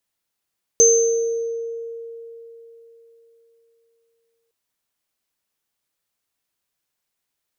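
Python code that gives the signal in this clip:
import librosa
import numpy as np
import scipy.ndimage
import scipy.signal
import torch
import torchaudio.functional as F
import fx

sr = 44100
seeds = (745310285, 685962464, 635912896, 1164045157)

y = fx.additive_free(sr, length_s=3.71, hz=461.0, level_db=-12, upper_db=(3.0,), decay_s=3.76, upper_decays_s=(0.98,), upper_hz=(6250.0,))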